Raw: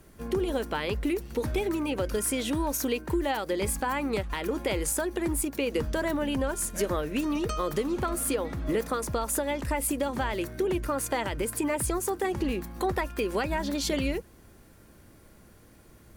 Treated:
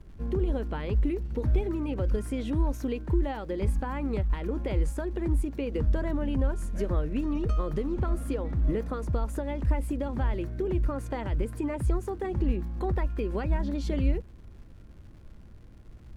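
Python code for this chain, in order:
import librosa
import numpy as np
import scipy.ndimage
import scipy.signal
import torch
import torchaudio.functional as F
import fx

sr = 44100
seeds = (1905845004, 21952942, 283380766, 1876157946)

y = fx.dmg_crackle(x, sr, seeds[0], per_s=210.0, level_db=-38.0)
y = fx.riaa(y, sr, side='playback')
y = F.gain(torch.from_numpy(y), -7.0).numpy()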